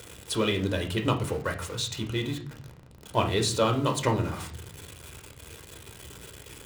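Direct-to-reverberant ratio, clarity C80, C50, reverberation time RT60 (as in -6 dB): 3.0 dB, 16.5 dB, 11.5 dB, 0.50 s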